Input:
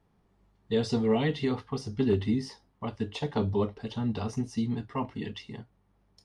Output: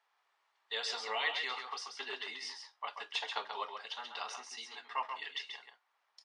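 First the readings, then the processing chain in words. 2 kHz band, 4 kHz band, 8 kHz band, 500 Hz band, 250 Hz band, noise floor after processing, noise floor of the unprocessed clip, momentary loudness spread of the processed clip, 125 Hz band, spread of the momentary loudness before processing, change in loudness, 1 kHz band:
+4.0 dB, +4.0 dB, +0.5 dB, −17.0 dB, −35.5 dB, −79 dBFS, −69 dBFS, 10 LU, below −40 dB, 13 LU, −8.5 dB, −0.5 dB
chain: Bessel high-pass filter 1,300 Hz, order 4
high-frequency loss of the air 82 metres
on a send: single-tap delay 135 ms −6.5 dB
on the sum: level +5.5 dB

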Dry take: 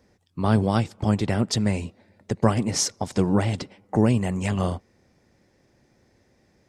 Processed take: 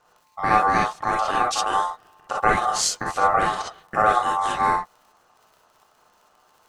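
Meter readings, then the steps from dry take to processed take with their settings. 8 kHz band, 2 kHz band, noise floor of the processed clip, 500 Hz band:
+2.0 dB, +10.5 dB, −61 dBFS, −0.5 dB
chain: surface crackle 44 per second −43 dBFS
reverb whose tail is shaped and stops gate 80 ms rising, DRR −2.5 dB
ring modulation 970 Hz

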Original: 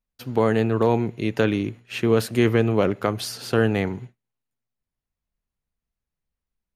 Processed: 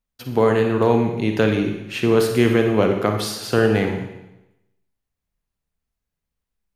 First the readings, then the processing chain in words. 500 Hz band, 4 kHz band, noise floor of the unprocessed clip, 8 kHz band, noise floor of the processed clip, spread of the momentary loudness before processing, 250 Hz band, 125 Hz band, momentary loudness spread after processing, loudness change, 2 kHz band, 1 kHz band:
+4.0 dB, +3.5 dB, below −85 dBFS, +3.5 dB, −83 dBFS, 8 LU, +3.0 dB, +1.5 dB, 8 LU, +3.5 dB, +3.5 dB, +3.5 dB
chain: four-comb reverb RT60 0.92 s, DRR 4 dB
level +2 dB

